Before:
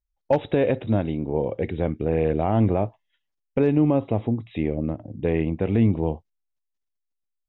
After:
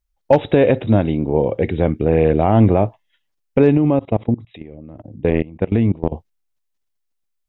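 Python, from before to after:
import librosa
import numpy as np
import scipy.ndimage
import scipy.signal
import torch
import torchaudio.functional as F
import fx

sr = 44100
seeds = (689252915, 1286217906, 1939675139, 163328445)

y = fx.level_steps(x, sr, step_db=22, at=(3.77, 6.12))
y = F.gain(torch.from_numpy(y), 7.5).numpy()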